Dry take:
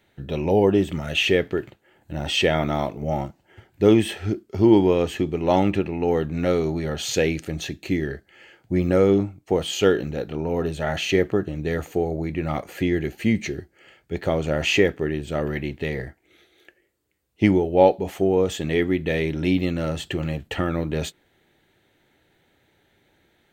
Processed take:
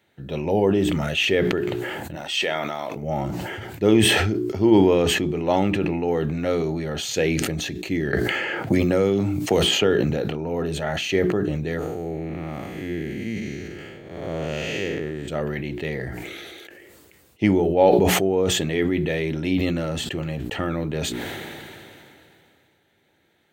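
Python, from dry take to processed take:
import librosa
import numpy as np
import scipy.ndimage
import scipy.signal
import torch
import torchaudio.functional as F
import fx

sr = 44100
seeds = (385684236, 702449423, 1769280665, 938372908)

y = fx.highpass(x, sr, hz=850.0, slope=6, at=(2.15, 2.96))
y = fx.band_squash(y, sr, depth_pct=100, at=(8.13, 10.1))
y = fx.spec_blur(y, sr, span_ms=298.0, at=(11.79, 15.28))
y = scipy.signal.sosfilt(scipy.signal.butter(2, 85.0, 'highpass', fs=sr, output='sos'), y)
y = fx.hum_notches(y, sr, base_hz=60, count=7)
y = fx.sustainer(y, sr, db_per_s=22.0)
y = y * librosa.db_to_amplitude(-1.5)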